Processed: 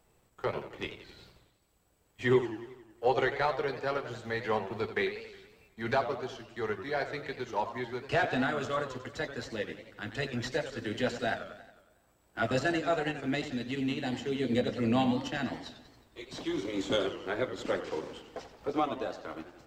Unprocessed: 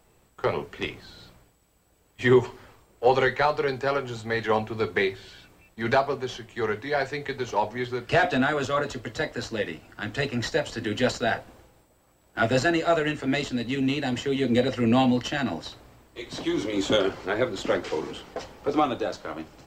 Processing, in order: transient shaper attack -1 dB, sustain -6 dB; warbling echo 91 ms, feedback 57%, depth 191 cents, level -11 dB; gain -6.5 dB

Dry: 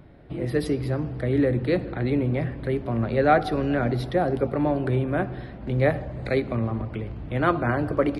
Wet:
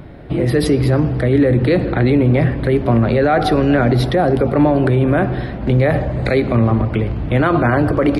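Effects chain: maximiser +18 dB; gain -4.5 dB

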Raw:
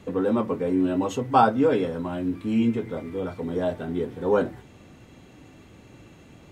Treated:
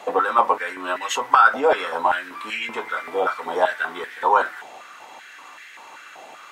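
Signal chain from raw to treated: maximiser +16.5 dB; stepped high-pass 5.2 Hz 750–1800 Hz; gain -6 dB

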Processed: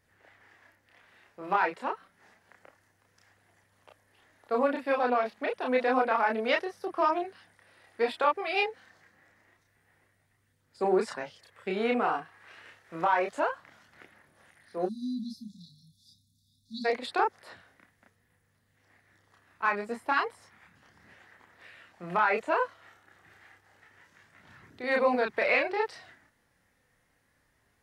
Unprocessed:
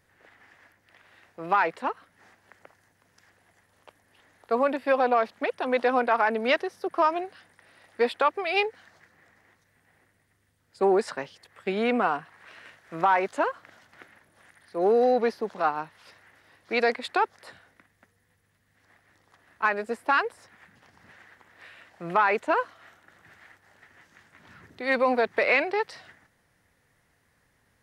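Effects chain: spectral delete 14.85–16.85, 260–3400 Hz; chorus voices 2, 0.14 Hz, delay 30 ms, depth 2.7 ms

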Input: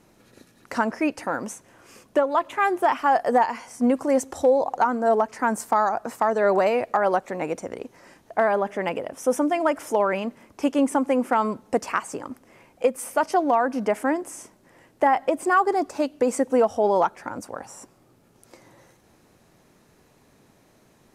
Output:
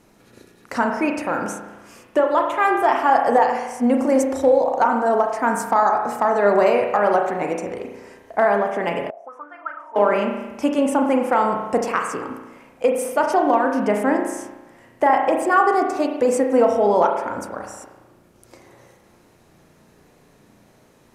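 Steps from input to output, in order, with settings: spring tank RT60 1.1 s, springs 34 ms, chirp 75 ms, DRR 2.5 dB; 9.1–9.96 auto-wah 600–1500 Hz, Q 10, up, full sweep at -14.5 dBFS; gain +2 dB

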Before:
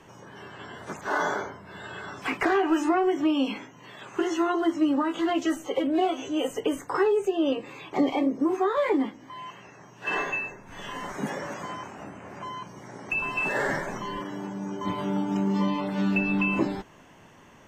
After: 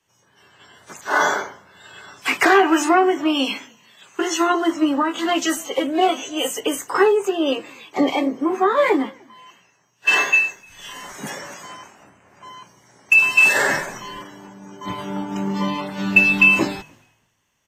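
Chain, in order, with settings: tilt +2.5 dB/oct; frequency-shifting echo 0.303 s, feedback 33%, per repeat -43 Hz, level -22 dB; three-band expander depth 100%; gain +7 dB

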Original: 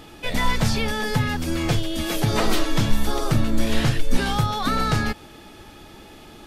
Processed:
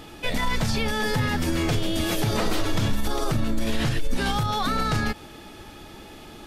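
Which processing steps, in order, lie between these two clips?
limiter -16 dBFS, peak gain reduction 9.5 dB; 0.9–2.96 frequency-shifting echo 0.136 s, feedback 49%, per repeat +89 Hz, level -12 dB; gain +1 dB

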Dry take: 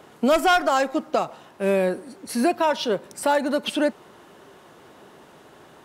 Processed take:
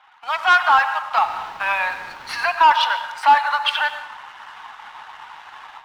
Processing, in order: bin magnitudes rounded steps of 15 dB; in parallel at +1 dB: compressor, threshold -29 dBFS, peak gain reduction 13 dB; on the sum: Chebyshev high-pass 840 Hz, order 5; 1.19–2.5 requantised 8-bit, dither triangular; AGC gain up to 9.5 dB; air absorption 290 m; on a send at -9.5 dB: reverb RT60 1.2 s, pre-delay 82 ms; on the sum: sample leveller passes 1

